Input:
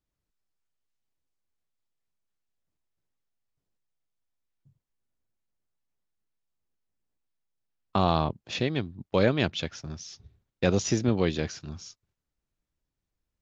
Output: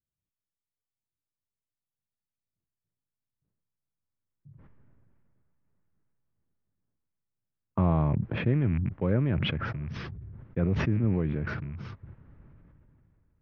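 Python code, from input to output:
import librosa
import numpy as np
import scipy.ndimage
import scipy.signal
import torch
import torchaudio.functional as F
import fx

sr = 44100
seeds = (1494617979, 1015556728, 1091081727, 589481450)

p1 = fx.rattle_buzz(x, sr, strikes_db=-39.0, level_db=-29.0)
p2 = fx.doppler_pass(p1, sr, speed_mps=15, closest_m=5.4, pass_at_s=5.76)
p3 = fx.rider(p2, sr, range_db=4, speed_s=0.5)
p4 = p2 + (p3 * librosa.db_to_amplitude(0.0))
p5 = scipy.signal.sosfilt(scipy.signal.butter(4, 1900.0, 'lowpass', fs=sr, output='sos'), p4)
p6 = fx.peak_eq(p5, sr, hz=120.0, db=12.5, octaves=2.3)
p7 = fx.notch(p6, sr, hz=740.0, q=12.0)
p8 = fx.sustainer(p7, sr, db_per_s=20.0)
y = p8 * librosa.db_to_amplitude(3.5)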